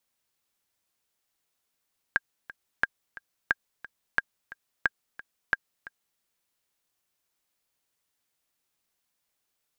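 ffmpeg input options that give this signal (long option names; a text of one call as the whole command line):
ffmpeg -f lavfi -i "aevalsrc='pow(10,(-9-18.5*gte(mod(t,2*60/178),60/178))/20)*sin(2*PI*1610*mod(t,60/178))*exp(-6.91*mod(t,60/178)/0.03)':duration=4.04:sample_rate=44100" out.wav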